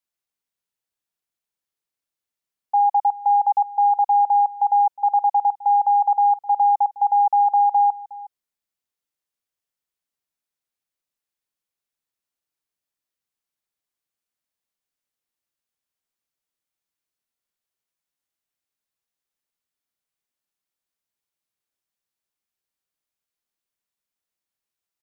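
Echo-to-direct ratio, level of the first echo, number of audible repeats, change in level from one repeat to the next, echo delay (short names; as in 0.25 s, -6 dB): -19.0 dB, -19.0 dB, 1, no steady repeat, 0.363 s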